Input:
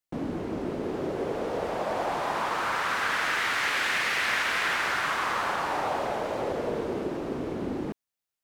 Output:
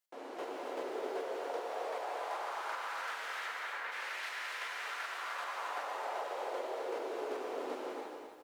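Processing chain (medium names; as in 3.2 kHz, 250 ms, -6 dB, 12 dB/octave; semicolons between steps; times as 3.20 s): 3.46–3.92 s: low-pass 1.7 kHz 12 dB/octave; early reflections 11 ms -12.5 dB, 75 ms -15.5 dB; square tremolo 2.6 Hz, depth 60%, duty 15%; saturation -19.5 dBFS, distortion -22 dB; high-pass 450 Hz 24 dB/octave; compression 4:1, threshold -36 dBFS, peak gain reduction 9.5 dB; gated-style reverb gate 370 ms flat, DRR -1 dB; gain riding within 4 dB 0.5 s; bit-crushed delay 262 ms, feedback 35%, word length 10-bit, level -7 dB; trim -4 dB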